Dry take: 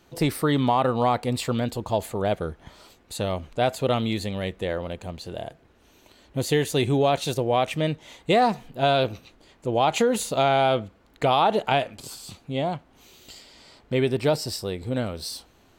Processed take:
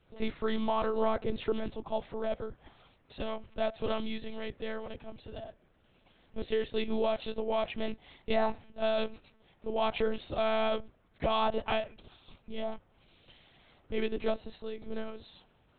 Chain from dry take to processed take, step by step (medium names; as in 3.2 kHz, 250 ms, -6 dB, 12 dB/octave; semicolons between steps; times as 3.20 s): 0.91–1.57 s: small resonant body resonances 410/1500 Hz, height 11 dB, ringing for 30 ms; monotone LPC vocoder at 8 kHz 220 Hz; trim -8.5 dB